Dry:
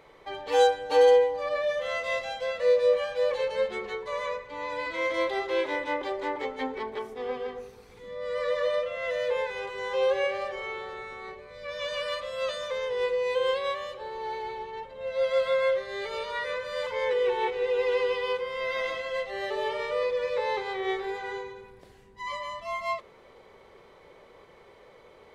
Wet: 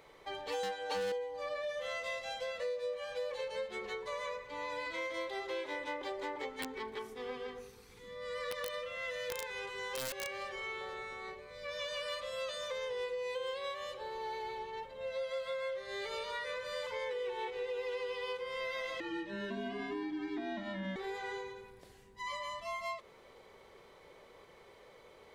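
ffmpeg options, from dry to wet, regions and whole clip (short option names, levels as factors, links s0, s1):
-filter_complex "[0:a]asettb=1/sr,asplit=3[s0][s1][s2];[s0]atrim=end=0.634[s3];[s1]atrim=start=0.63:end=1.12,asetpts=PTS-STARTPTS,afade=t=in:d=0.004:c=qsin,afade=t=out:st=0.486:d=0.004:c=qsin,asplit=2[s4][s5];[s5]highpass=f=720:p=1,volume=6.31,asoftclip=type=tanh:threshold=0.299[s6];[s4][s6]amix=inputs=2:normalize=0,lowpass=f=4700:p=1,volume=0.501,asoftclip=type=hard:threshold=0.168[s7];[s2]atrim=start=1.116[s8];[s3][s7]acrossfade=d=0.004:c1=hsin:c2=qsin[s9];[s9][s8]acrossfade=d=0.004:c1=qsin:c2=hsin,asettb=1/sr,asplit=3[s10][s11][s12];[s10]atrim=end=6.494[s13];[s11]atrim=start=6.49:end=10.81,asetpts=PTS-STARTPTS,afade=t=in:d=0.004:c=qsin,afade=t=out:st=4.316:d=0.004:c=qsin,equalizer=f=630:w=2.4:g=-9.5,aeval=exprs='(mod(14.1*val(0)+1,2)-1)/14.1':c=same[s14];[s12]atrim=start=10.806[s15];[s13][s14]acrossfade=d=0.004:c1=hsin:c2=qsin[s16];[s16][s15]acrossfade=d=0.004:c1=qsin:c2=hsin,asettb=1/sr,asplit=3[s17][s18][s19];[s17]atrim=end=19.004[s20];[s18]atrim=start=19:end=20.96,asetpts=PTS-STARTPTS,afade=t=in:d=0.004:c=qsin,afade=t=out:st=1.956:d=0.004:c=qsin,lowpass=f=2600:p=1,afreqshift=-190[s21];[s19]atrim=start=20.956[s22];[s20][s21]acrossfade=d=0.004:c1=hsin:c2=qsin[s23];[s23][s22]acrossfade=d=0.004:c1=qsin:c2=hsin,highshelf=f=4000:g=8,acompressor=threshold=0.0282:ratio=6,volume=0.562"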